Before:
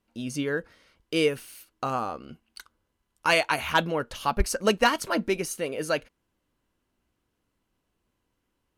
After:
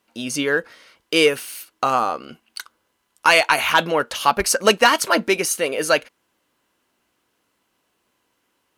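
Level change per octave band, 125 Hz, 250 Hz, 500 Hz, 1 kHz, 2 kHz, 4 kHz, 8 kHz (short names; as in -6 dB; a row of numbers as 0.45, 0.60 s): -0.5, +4.0, +7.0, +8.5, +9.0, +9.5, +11.5 dB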